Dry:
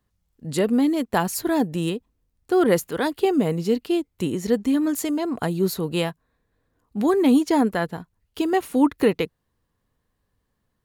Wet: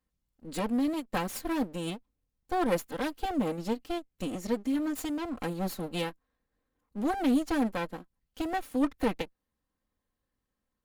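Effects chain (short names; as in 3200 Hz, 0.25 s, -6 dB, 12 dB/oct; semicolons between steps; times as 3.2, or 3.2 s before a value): minimum comb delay 3.8 ms; ending taper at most 390 dB/s; gain -8.5 dB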